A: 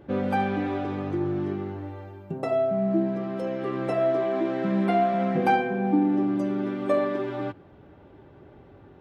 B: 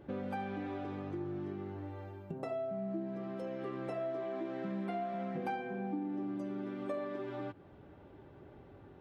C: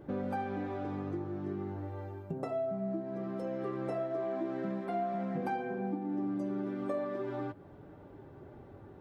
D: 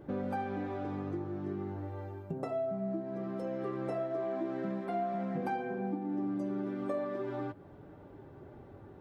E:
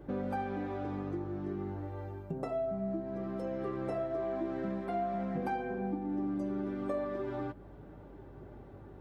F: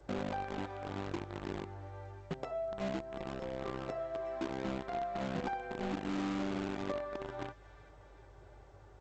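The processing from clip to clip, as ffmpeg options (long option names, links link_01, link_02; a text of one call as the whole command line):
ffmpeg -i in.wav -af "acompressor=threshold=-35dB:ratio=2.5,volume=-5dB" out.wav
ffmpeg -i in.wav -af "flanger=delay=6.4:depth=3.8:regen=-66:speed=0.38:shape=triangular,equalizer=frequency=2900:width=1.2:gain=-7,volume=8dB" out.wav
ffmpeg -i in.wav -af anull out.wav
ffmpeg -i in.wav -af "aeval=exprs='val(0)+0.002*(sin(2*PI*50*n/s)+sin(2*PI*2*50*n/s)/2+sin(2*PI*3*50*n/s)/3+sin(2*PI*4*50*n/s)/4+sin(2*PI*5*50*n/s)/5)':channel_layout=same" out.wav
ffmpeg -i in.wav -filter_complex "[0:a]acrossover=split=120|410|1400[link_01][link_02][link_03][link_04];[link_02]acrusher=bits=5:mix=0:aa=0.000001[link_05];[link_04]aecho=1:1:372|744|1116|1488|1860|2232|2604|2976:0.447|0.268|0.161|0.0965|0.0579|0.0347|0.0208|0.0125[link_06];[link_01][link_05][link_03][link_06]amix=inputs=4:normalize=0,volume=-2.5dB" -ar 16000 -c:a g722 out.g722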